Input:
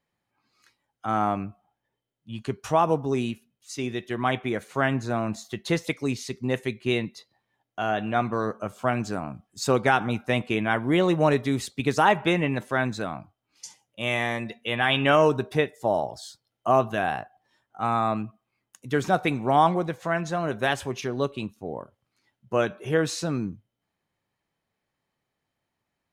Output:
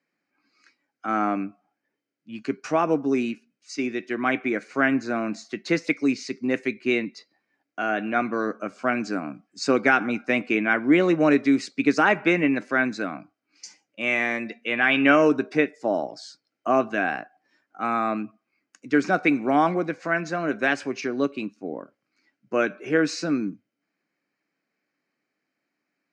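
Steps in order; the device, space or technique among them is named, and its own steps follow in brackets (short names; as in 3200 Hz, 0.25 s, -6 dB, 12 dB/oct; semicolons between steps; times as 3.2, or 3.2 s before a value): television speaker (speaker cabinet 180–6900 Hz, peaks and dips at 290 Hz +9 dB, 910 Hz -7 dB, 1500 Hz +6 dB, 2300 Hz +8 dB, 3400 Hz -10 dB, 4800 Hz +5 dB)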